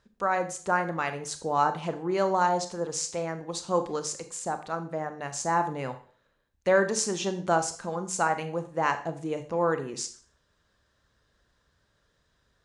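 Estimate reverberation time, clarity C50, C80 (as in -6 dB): 0.45 s, 12.0 dB, 16.5 dB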